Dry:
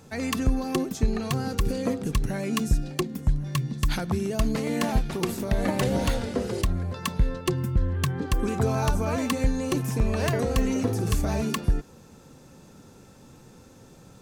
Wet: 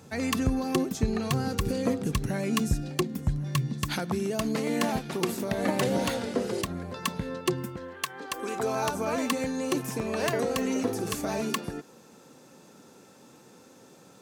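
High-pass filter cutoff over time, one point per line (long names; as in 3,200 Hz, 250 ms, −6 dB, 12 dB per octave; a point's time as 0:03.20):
0:03.51 68 Hz
0:04.03 180 Hz
0:07.53 180 Hz
0:08.07 740 Hz
0:08.96 240 Hz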